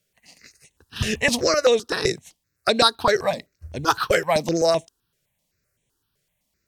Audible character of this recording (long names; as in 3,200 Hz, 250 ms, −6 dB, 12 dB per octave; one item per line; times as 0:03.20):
notches that jump at a steady rate 7.8 Hz 260–4,800 Hz